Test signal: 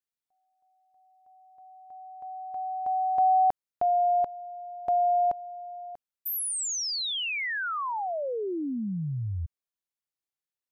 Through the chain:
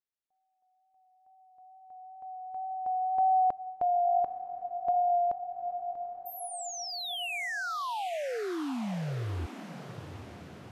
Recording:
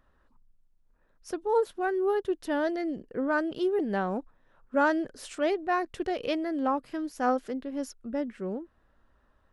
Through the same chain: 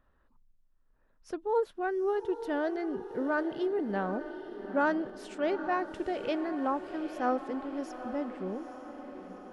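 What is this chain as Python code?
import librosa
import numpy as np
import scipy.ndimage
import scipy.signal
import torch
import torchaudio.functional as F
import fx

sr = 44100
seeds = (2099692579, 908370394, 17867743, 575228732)

p1 = fx.high_shelf(x, sr, hz=6300.0, db=-12.0)
p2 = fx.wow_flutter(p1, sr, seeds[0], rate_hz=2.1, depth_cents=17.0)
p3 = p2 + fx.echo_diffused(p2, sr, ms=840, feedback_pct=59, wet_db=-11.0, dry=0)
y = p3 * 10.0 ** (-3.0 / 20.0)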